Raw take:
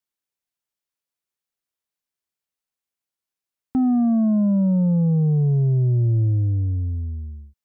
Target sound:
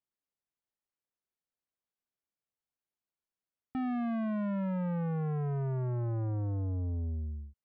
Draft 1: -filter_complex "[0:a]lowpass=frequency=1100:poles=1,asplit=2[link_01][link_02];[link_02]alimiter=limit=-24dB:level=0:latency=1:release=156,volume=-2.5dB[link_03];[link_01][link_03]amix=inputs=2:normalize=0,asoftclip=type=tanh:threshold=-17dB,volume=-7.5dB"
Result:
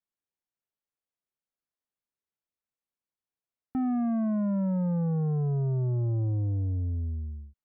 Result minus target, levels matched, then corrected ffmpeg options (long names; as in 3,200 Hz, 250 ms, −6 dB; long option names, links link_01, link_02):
soft clipping: distortion −7 dB
-filter_complex "[0:a]lowpass=frequency=1100:poles=1,asplit=2[link_01][link_02];[link_02]alimiter=limit=-24dB:level=0:latency=1:release=156,volume=-2.5dB[link_03];[link_01][link_03]amix=inputs=2:normalize=0,asoftclip=type=tanh:threshold=-24dB,volume=-7.5dB"